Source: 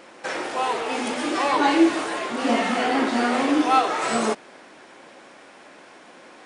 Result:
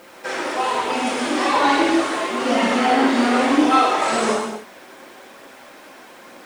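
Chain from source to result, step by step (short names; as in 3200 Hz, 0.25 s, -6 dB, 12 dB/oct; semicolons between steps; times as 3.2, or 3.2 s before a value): non-linear reverb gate 0.33 s falling, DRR -4.5 dB; added noise white -55 dBFS; phaser 1.1 Hz, delay 3.7 ms, feedback 23%; gain -2 dB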